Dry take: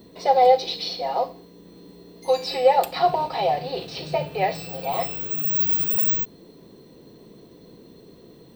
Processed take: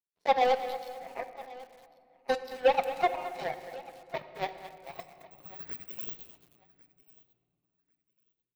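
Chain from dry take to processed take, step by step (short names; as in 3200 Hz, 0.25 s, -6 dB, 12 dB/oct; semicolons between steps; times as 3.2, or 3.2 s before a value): in parallel at -7 dB: sine folder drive 6 dB, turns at -5 dBFS; on the sum: reverb removal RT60 0.93 s; power-law curve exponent 3; feedback echo 1.095 s, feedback 18%, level -21 dB; on a send at -10 dB: reverb RT60 2.7 s, pre-delay 5 ms; on the sum: lo-fi delay 0.218 s, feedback 35%, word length 6-bit, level -13 dB; gain -8.5 dB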